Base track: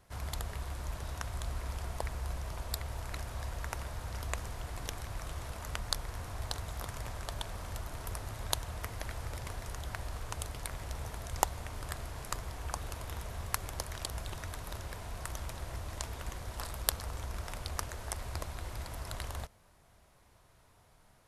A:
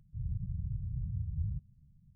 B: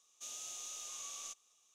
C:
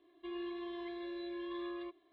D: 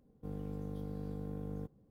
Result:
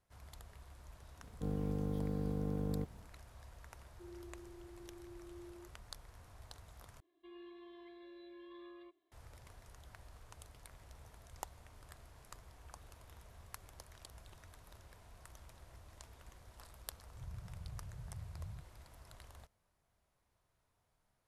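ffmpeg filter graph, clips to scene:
ffmpeg -i bed.wav -i cue0.wav -i cue1.wav -i cue2.wav -i cue3.wav -filter_complex "[3:a]asplit=2[link_01][link_02];[0:a]volume=-16.5dB[link_03];[4:a]acontrast=52[link_04];[link_01]asuperpass=centerf=390:order=8:qfactor=5[link_05];[link_03]asplit=2[link_06][link_07];[link_06]atrim=end=7.004[link_08];[link_02]atrim=end=2.12,asetpts=PTS-STARTPTS,volume=-12dB[link_09];[link_07]atrim=start=9.116[link_10];[link_04]atrim=end=1.9,asetpts=PTS-STARTPTS,volume=-2dB,afade=type=in:duration=0.004:curve=hsin,afade=type=out:start_time=1.896:duration=0.004:curve=hsin,adelay=1180[link_11];[link_05]atrim=end=2.12,asetpts=PTS-STARTPTS,volume=-5dB,afade=type=in:duration=0.004:curve=hsin,afade=type=out:start_time=2.116:duration=0.004:curve=hsin,adelay=3750[link_12];[1:a]atrim=end=2.15,asetpts=PTS-STARTPTS,volume=-12dB,afade=type=in:duration=0.004:curve=hsin,afade=type=out:start_time=2.146:duration=0.004:curve=hsin,adelay=17020[link_13];[link_08][link_09]acrossfade=duration=0.004:curve1=hsin:curve2=hsin[link_14];[link_14][link_10]acrossfade=duration=0.004:curve1=hsin:curve2=hsin[link_15];[link_15][link_11][link_12][link_13]amix=inputs=4:normalize=0" out.wav

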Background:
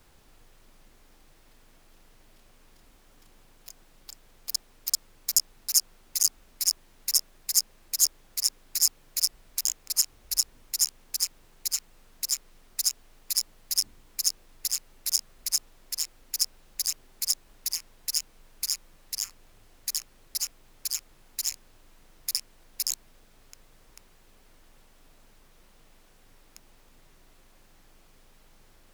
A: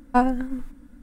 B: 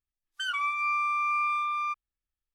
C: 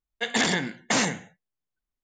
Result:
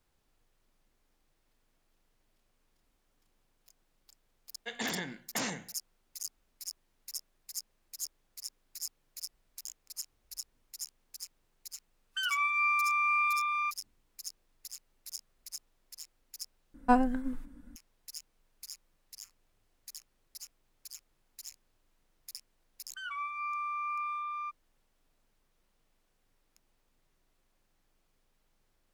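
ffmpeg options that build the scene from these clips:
ffmpeg -i bed.wav -i cue0.wav -i cue1.wav -i cue2.wav -filter_complex "[2:a]asplit=2[link_01][link_02];[0:a]volume=-17dB[link_03];[link_01]equalizer=frequency=2600:width=7.8:gain=13.5[link_04];[link_02]equalizer=frequency=1000:width=0.49:gain=9.5[link_05];[link_03]asplit=2[link_06][link_07];[link_06]atrim=end=16.744[link_08];[1:a]atrim=end=1.02,asetpts=PTS-STARTPTS,volume=-5dB[link_09];[link_07]atrim=start=17.756[link_10];[3:a]atrim=end=2.03,asetpts=PTS-STARTPTS,volume=-12dB,afade=type=in:duration=0.004:curve=hsin,afade=type=out:start_time=2.026:duration=0.004:curve=hsin,adelay=196245S[link_11];[link_04]atrim=end=2.54,asetpts=PTS-STARTPTS,volume=-2.5dB,afade=type=in:duration=0.004:curve=hsin,afade=type=out:start_time=2.536:duration=0.004:curve=hsin,adelay=11770[link_12];[link_05]atrim=end=2.54,asetpts=PTS-STARTPTS,volume=-16.5dB,afade=type=in:duration=0.004:curve=hsin,afade=type=out:start_time=2.536:duration=0.004:curve=hsin,adelay=22570[link_13];[link_08][link_09]acrossfade=duration=0.004:curve1=hsin:curve2=hsin[link_14];[link_14][link_10]acrossfade=duration=0.004:curve1=hsin:curve2=hsin[link_15];[link_15][link_11][link_12][link_13]amix=inputs=4:normalize=0" out.wav

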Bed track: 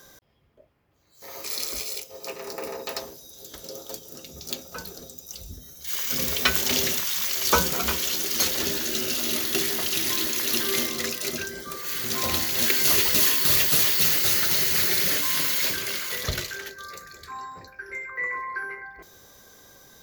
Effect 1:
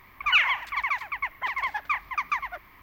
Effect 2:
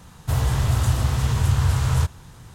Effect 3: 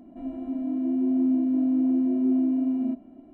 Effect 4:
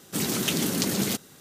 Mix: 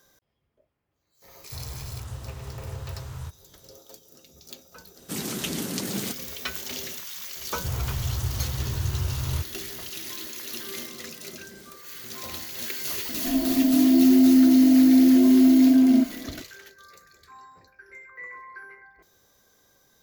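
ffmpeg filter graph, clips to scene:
ffmpeg -i bed.wav -i cue0.wav -i cue1.wav -i cue2.wav -i cue3.wav -filter_complex "[2:a]asplit=2[link_01][link_02];[4:a]asplit=2[link_03][link_04];[0:a]volume=-11dB[link_05];[link_02]lowshelf=frequency=120:gain=5[link_06];[link_04]acompressor=threshold=-32dB:ratio=6:attack=3.2:release=140:knee=1:detection=peak[link_07];[3:a]alimiter=level_in=19.5dB:limit=-1dB:release=50:level=0:latency=1[link_08];[link_01]atrim=end=2.54,asetpts=PTS-STARTPTS,volume=-17dB,afade=type=in:duration=0.004:curve=hsin,afade=type=out:start_time=2.536:duration=0.004:curve=hsin,adelay=1240[link_09];[link_03]atrim=end=1.4,asetpts=PTS-STARTPTS,volume=-4.5dB,afade=type=in:duration=0.004:curve=hsin,afade=type=out:start_time=1.396:duration=0.004:curve=hsin,adelay=4960[link_10];[link_06]atrim=end=2.54,asetpts=PTS-STARTPTS,volume=-11.5dB,afade=type=in:duration=0.004:curve=hsin,afade=type=out:start_time=2.536:duration=0.004:curve=hsin,adelay=7360[link_11];[link_07]atrim=end=1.4,asetpts=PTS-STARTPTS,volume=-15dB,afade=type=in:duration=0.004:curve=hsin,afade=type=out:start_time=1.396:duration=0.004:curve=hsin,adelay=10540[link_12];[link_08]atrim=end=3.33,asetpts=PTS-STARTPTS,volume=-10dB,afade=type=in:duration=0.004:curve=hsin,afade=type=out:start_time=3.326:duration=0.004:curve=hsin,adelay=13090[link_13];[link_05][link_09][link_10][link_11][link_12][link_13]amix=inputs=6:normalize=0" out.wav

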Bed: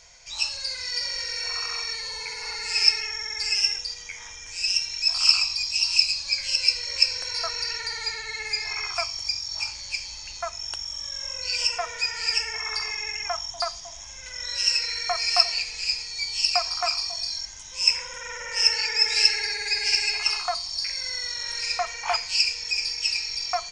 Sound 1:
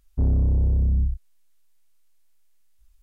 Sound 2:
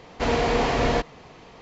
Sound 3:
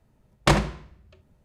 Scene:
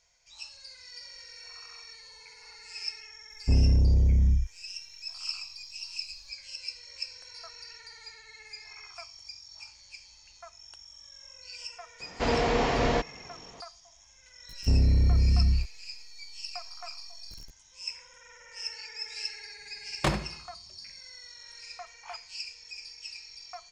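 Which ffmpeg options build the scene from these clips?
ffmpeg -i bed.wav -i cue0.wav -i cue1.wav -i cue2.wav -filter_complex "[1:a]asplit=2[link_01][link_02];[0:a]volume=-17dB[link_03];[link_02]aeval=exprs='val(0)+0.5*0.00944*sgn(val(0))':channel_layout=same[link_04];[link_01]atrim=end=3.02,asetpts=PTS-STARTPTS,volume=-1dB,afade=type=in:duration=0.004:curve=hsin,afade=type=out:start_time=3.016:duration=0.004:curve=hsin,adelay=3300[link_05];[2:a]atrim=end=1.61,asetpts=PTS-STARTPTS,volume=-3.5dB,afade=type=in:duration=0.004:curve=hsin,afade=type=out:start_time=1.606:duration=0.004:curve=hsin,adelay=12000[link_06];[link_04]atrim=end=3.02,asetpts=PTS-STARTPTS,volume=-2dB,afade=type=in:duration=0.004:curve=hsin,afade=type=out:start_time=3.016:duration=0.004:curve=hsin,adelay=14490[link_07];[3:a]atrim=end=1.44,asetpts=PTS-STARTPTS,volume=-8dB,afade=type=in:duration=0.004:curve=hsin,afade=type=out:start_time=1.436:duration=0.004:curve=hsin,adelay=19570[link_08];[link_03][link_05][link_06][link_07][link_08]amix=inputs=5:normalize=0" out.wav

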